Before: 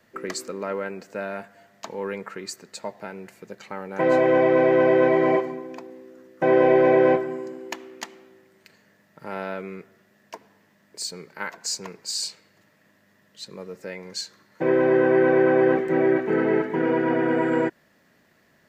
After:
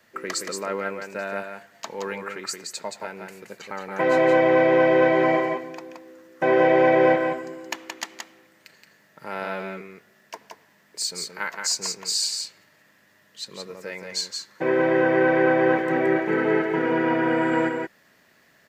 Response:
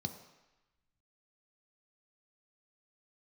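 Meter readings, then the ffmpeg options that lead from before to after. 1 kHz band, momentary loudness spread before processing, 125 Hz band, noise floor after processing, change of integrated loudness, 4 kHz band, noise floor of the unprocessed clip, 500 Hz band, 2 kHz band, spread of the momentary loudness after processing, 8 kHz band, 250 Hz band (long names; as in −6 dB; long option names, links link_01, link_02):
+2.5 dB, 20 LU, −1.0 dB, −60 dBFS, −0.5 dB, +5.0 dB, −62 dBFS, −1.0 dB, +3.5 dB, 19 LU, +5.0 dB, −0.5 dB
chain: -filter_complex "[0:a]tiltshelf=frequency=690:gain=-4,asplit=2[link_01][link_02];[link_02]aecho=0:1:173:0.562[link_03];[link_01][link_03]amix=inputs=2:normalize=0"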